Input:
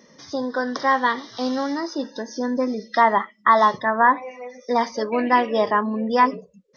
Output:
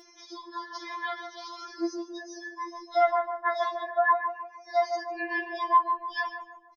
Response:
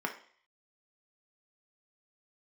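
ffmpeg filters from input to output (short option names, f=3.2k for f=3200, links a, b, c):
-filter_complex "[0:a]asplit=2[a][b];[b]adelay=151,lowpass=f=1.1k:p=1,volume=-5dB,asplit=2[c][d];[d]adelay=151,lowpass=f=1.1k:p=1,volume=0.52,asplit=2[e][f];[f]adelay=151,lowpass=f=1.1k:p=1,volume=0.52,asplit=2[g][h];[h]adelay=151,lowpass=f=1.1k:p=1,volume=0.52,asplit=2[i][j];[j]adelay=151,lowpass=f=1.1k:p=1,volume=0.52,asplit=2[k][l];[l]adelay=151,lowpass=f=1.1k:p=1,volume=0.52,asplit=2[m][n];[n]adelay=151,lowpass=f=1.1k:p=1,volume=0.52[o];[a][c][e][g][i][k][m][o]amix=inputs=8:normalize=0,acompressor=mode=upward:threshold=-37dB:ratio=2.5,afftfilt=real='re*4*eq(mod(b,16),0)':imag='im*4*eq(mod(b,16),0)':win_size=2048:overlap=0.75,volume=-5.5dB"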